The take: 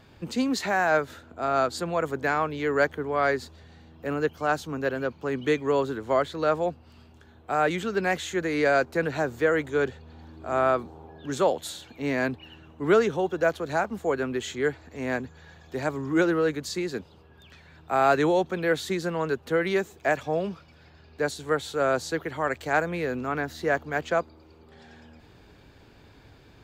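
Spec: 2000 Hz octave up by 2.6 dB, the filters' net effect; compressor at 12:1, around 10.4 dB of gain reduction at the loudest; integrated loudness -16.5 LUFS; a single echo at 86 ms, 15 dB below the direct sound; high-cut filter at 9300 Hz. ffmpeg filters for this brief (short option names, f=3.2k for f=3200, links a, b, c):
-af "lowpass=9.3k,equalizer=f=2k:t=o:g=3.5,acompressor=threshold=-26dB:ratio=12,aecho=1:1:86:0.178,volume=15.5dB"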